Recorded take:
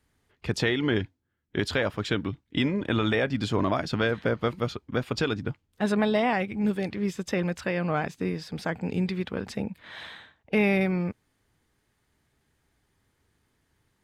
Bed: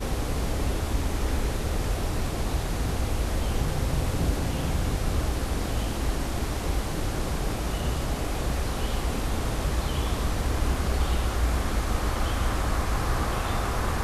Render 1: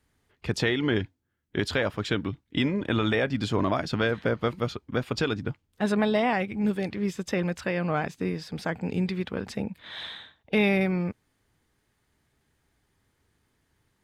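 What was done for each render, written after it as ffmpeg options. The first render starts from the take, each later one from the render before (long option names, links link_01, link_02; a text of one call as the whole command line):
ffmpeg -i in.wav -filter_complex "[0:a]asettb=1/sr,asplit=3[link_01][link_02][link_03];[link_01]atrim=end=9.794[link_04];[link_02]atrim=start=9.79:end=10.69,asetpts=PTS-STARTPTS,afade=type=in:duration=0.004:curve=qsin,afade=type=out:start_time=0.896:duration=0.004:curve=qsin,equalizer=frequency=3600:width=4.5:gain=10[link_05];[link_03]atrim=start=10.686[link_06];[link_04][link_05]acrossfade=duration=0.004:curve1=hsin:curve2=qsin[link_07];[link_07][link_06]acrossfade=duration=0.004:curve1=qsin:curve2=hsin" out.wav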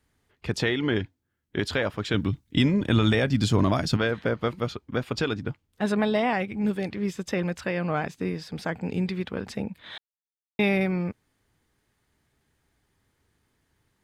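ffmpeg -i in.wav -filter_complex "[0:a]asettb=1/sr,asplit=3[link_01][link_02][link_03];[link_01]atrim=end=2.144[link_04];[link_02]atrim=start=2.14:end=3.97,asetpts=PTS-STARTPTS,afade=type=in:duration=0.004:curve=qsin,afade=type=out:start_time=1.826:duration=0.004:curve=qsin,bass=frequency=250:gain=8,treble=frequency=4000:gain=10[link_05];[link_03]atrim=start=3.966[link_06];[link_04][link_05]acrossfade=duration=0.004:curve1=hsin:curve2=qsin[link_07];[link_07][link_06]acrossfade=duration=0.004:curve1=qsin:curve2=hsin,asplit=3[link_08][link_09][link_10];[link_08]atrim=end=9.98,asetpts=PTS-STARTPTS,afade=type=out:start_time=9.976:duration=0.004:curve=hsin[link_11];[link_09]atrim=start=9.98:end=10.59,asetpts=PTS-STARTPTS,volume=0[link_12];[link_10]atrim=start=10.59,asetpts=PTS-STARTPTS,afade=type=in:duration=0.004:curve=hsin[link_13];[link_11][link_12][link_13]concat=n=3:v=0:a=1" out.wav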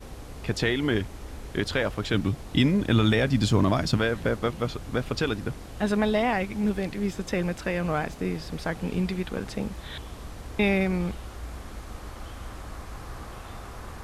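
ffmpeg -i in.wav -i bed.wav -filter_complex "[1:a]volume=-13dB[link_01];[0:a][link_01]amix=inputs=2:normalize=0" out.wav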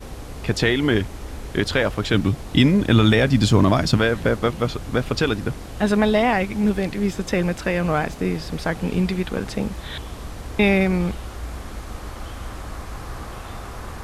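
ffmpeg -i in.wav -af "volume=6dB" out.wav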